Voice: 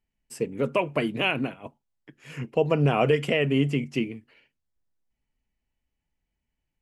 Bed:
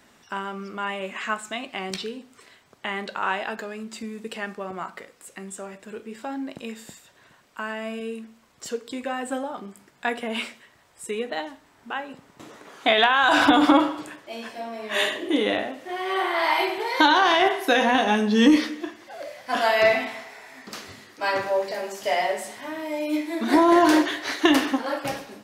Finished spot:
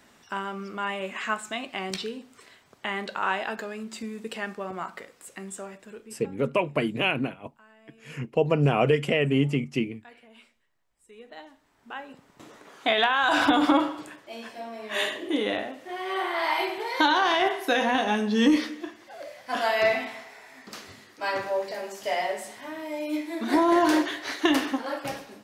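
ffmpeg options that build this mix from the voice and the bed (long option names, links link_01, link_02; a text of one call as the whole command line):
ffmpeg -i stem1.wav -i stem2.wav -filter_complex "[0:a]adelay=5800,volume=0dB[link_01];[1:a]volume=19.5dB,afade=type=out:start_time=5.55:duration=0.82:silence=0.0668344,afade=type=in:start_time=11.06:duration=1.34:silence=0.0944061[link_02];[link_01][link_02]amix=inputs=2:normalize=0" out.wav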